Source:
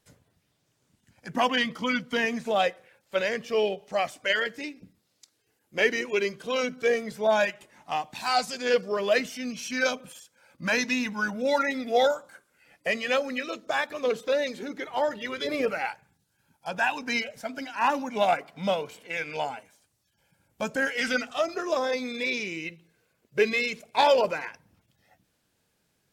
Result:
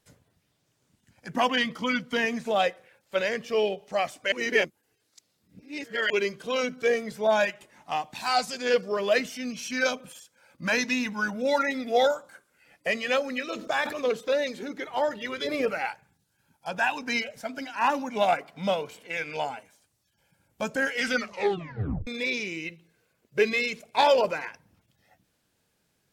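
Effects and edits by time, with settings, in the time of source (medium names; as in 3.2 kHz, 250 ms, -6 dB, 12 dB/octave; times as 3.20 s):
4.32–6.10 s: reverse
13.49–14.02 s: decay stretcher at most 88 dB/s
21.15 s: tape stop 0.92 s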